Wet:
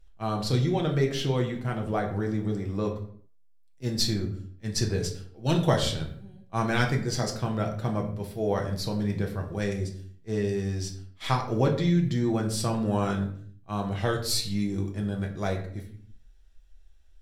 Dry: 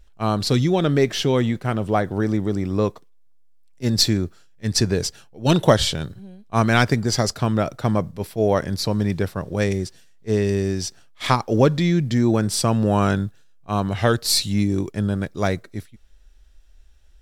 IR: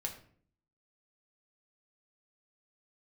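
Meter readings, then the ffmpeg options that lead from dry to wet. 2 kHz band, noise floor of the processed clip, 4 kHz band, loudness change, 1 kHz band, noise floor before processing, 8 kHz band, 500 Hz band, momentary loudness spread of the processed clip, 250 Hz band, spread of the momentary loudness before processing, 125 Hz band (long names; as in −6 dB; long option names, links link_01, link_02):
−7.5 dB, −55 dBFS, −8.0 dB, −7.0 dB, −7.5 dB, −49 dBFS, −8.5 dB, −7.5 dB, 10 LU, −7.0 dB, 10 LU, −5.5 dB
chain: -filter_complex "[1:a]atrim=start_sample=2205,afade=type=out:start_time=0.39:duration=0.01,atrim=end_sample=17640,asetrate=38808,aresample=44100[link_01];[0:a][link_01]afir=irnorm=-1:irlink=0,volume=-8.5dB"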